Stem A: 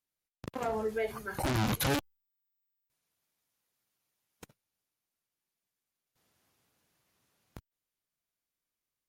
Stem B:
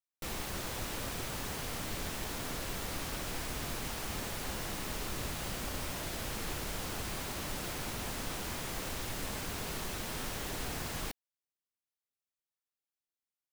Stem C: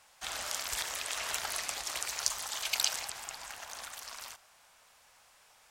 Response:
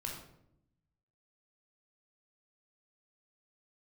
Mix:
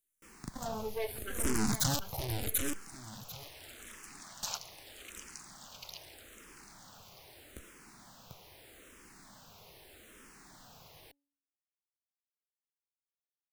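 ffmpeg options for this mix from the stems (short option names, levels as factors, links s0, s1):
-filter_complex "[0:a]aeval=exprs='if(lt(val(0),0),0.251*val(0),val(0))':c=same,bass=f=250:g=5,treble=f=4000:g=13,volume=1.06,asplit=3[s0][s1][s2];[s1]volume=0.596[s3];[1:a]lowshelf=f=99:g=-9,bandreject=f=282.5:t=h:w=4,bandreject=f=565:t=h:w=4,bandreject=f=847.5:t=h:w=4,volume=0.211[s4];[2:a]acontrast=74,adelay=2350,volume=0.596,asplit=2[s5][s6];[s6]volume=0.133[s7];[s2]apad=whole_len=355331[s8];[s5][s8]sidechaingate=range=0.112:threshold=0.00112:ratio=16:detection=peak[s9];[s3][s7]amix=inputs=2:normalize=0,aecho=0:1:743|1486|2229:1|0.2|0.04[s10];[s0][s4][s9][s10]amix=inputs=4:normalize=0,asplit=2[s11][s12];[s12]afreqshift=-0.8[s13];[s11][s13]amix=inputs=2:normalize=1"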